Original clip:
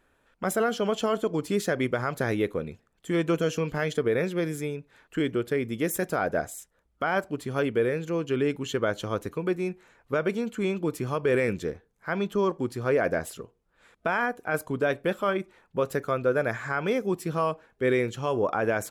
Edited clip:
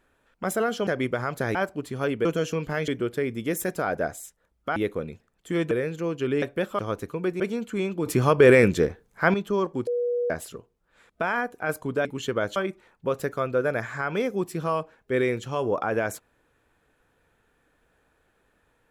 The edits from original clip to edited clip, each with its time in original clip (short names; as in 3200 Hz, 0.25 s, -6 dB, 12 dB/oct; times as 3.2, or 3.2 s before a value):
0.87–1.67 cut
2.35–3.3 swap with 7.1–7.8
3.93–5.22 cut
8.51–9.02 swap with 14.9–15.27
9.63–10.25 cut
10.91–12.19 gain +9 dB
12.72–13.15 bleep 484 Hz -22.5 dBFS